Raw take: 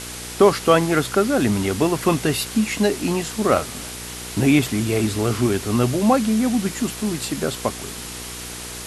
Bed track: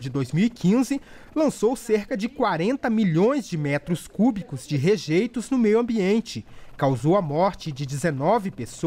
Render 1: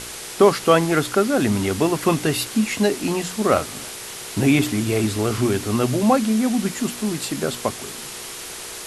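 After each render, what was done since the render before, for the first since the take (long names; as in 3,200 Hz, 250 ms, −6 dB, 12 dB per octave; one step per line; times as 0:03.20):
hum removal 60 Hz, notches 5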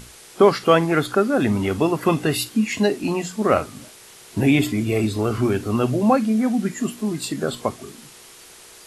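noise reduction from a noise print 11 dB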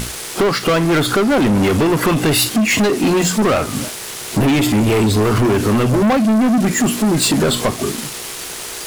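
downward compressor, threshold −22 dBFS, peak gain reduction 13 dB
leveller curve on the samples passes 5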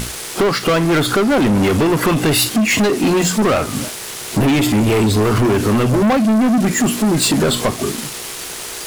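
no processing that can be heard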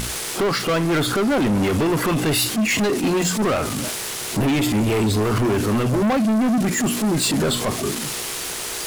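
transient designer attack −7 dB, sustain +10 dB
brickwall limiter −16 dBFS, peak gain reduction 12 dB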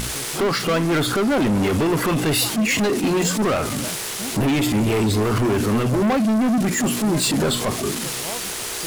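mix in bed track −14 dB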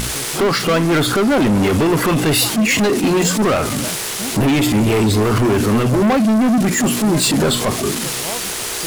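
level +4.5 dB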